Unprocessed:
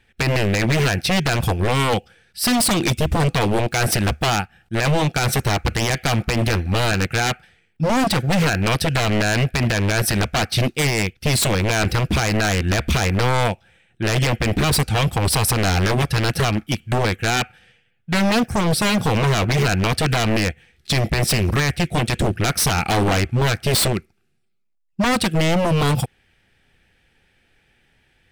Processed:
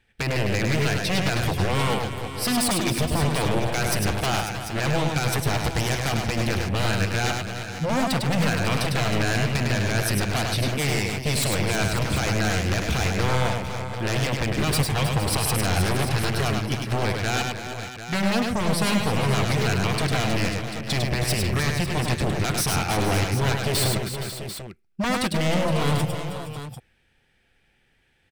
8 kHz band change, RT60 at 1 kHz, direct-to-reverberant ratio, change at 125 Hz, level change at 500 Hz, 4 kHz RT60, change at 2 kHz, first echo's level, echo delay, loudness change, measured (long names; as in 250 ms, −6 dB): −4.5 dB, no reverb audible, no reverb audible, −4.0 dB, −4.5 dB, no reverb audible, −4.5 dB, −4.0 dB, 102 ms, −4.5 dB